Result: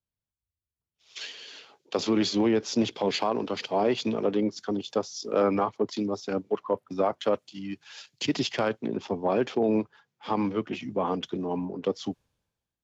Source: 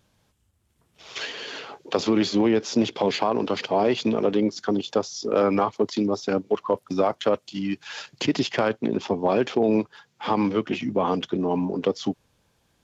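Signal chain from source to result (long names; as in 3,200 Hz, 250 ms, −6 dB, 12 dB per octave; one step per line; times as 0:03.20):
multiband upward and downward expander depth 70%
level −4 dB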